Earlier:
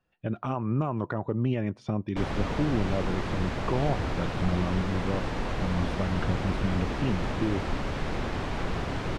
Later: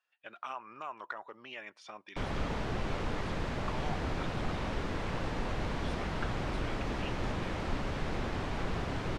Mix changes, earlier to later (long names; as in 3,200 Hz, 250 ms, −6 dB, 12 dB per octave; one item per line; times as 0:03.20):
speech: add high-pass filter 1,300 Hz 12 dB per octave
background −4.0 dB